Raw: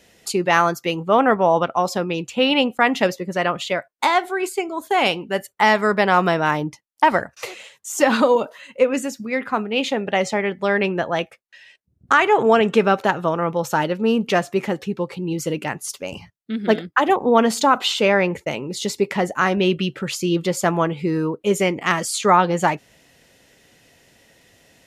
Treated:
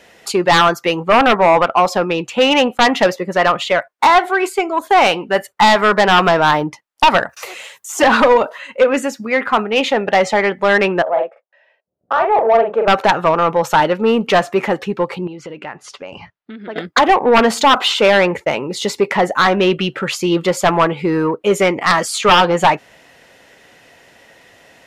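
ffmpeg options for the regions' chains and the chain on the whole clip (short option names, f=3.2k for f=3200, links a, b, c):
-filter_complex "[0:a]asettb=1/sr,asplit=3[a][b][c];[a]atrim=end=7.294[d];[b]atrim=start=7.29:end=7.89,asetpts=PTS-STARTPTS,afade=t=in:d=0.004:c=qsin,afade=t=out:st=0.596:d=0.004:c=qsin,aemphasis=mode=production:type=50fm,acompressor=threshold=-36dB:ratio=2.5:attack=3.2:release=140:knee=1:detection=peak[e];[c]atrim=start=7.886[f];[d][e]acrossfade=d=0.004:c1=hsin:c2=qsin[g];[g][f]acrossfade=d=0.004:c1=qsin:c2=hsin,asettb=1/sr,asplit=3[h][i][j];[h]atrim=end=11.024[k];[i]atrim=start=11.02:end=12.88,asetpts=PTS-STARTPTS,afade=t=in:d=0.004:c=qsin,afade=t=out:st=1.856:d=0.004:c=qsin,bandpass=f=600:t=q:w=3,asplit=2[l][m];[m]adelay=44,volume=-4.5dB[n];[l][n]amix=inputs=2:normalize=0,atrim=end_sample=82026[o];[j]atrim=start=12.876[p];[k][o]acrossfade=d=0.004:c1=hsin:c2=qsin[q];[q][p]acrossfade=d=0.004:c1=qsin:c2=hsin,asettb=1/sr,asplit=3[r][s][t];[r]atrim=end=15.274[u];[s]atrim=start=15.27:end=16.76,asetpts=PTS-STARTPTS,afade=t=in:d=0.004:c=qsin,afade=t=out:st=1.486:d=0.004:c=qsin,lowpass=4.2k,acompressor=threshold=-35dB:ratio=5:attack=3.2:release=140:knee=1:detection=peak[v];[t]atrim=start=16.756[w];[u][v]acrossfade=d=0.004:c1=hsin:c2=qsin[x];[x][w]acrossfade=d=0.004:c1=qsin:c2=hsin,equalizer=f=1.1k:w=0.37:g=12,acontrast=31,volume=-5dB"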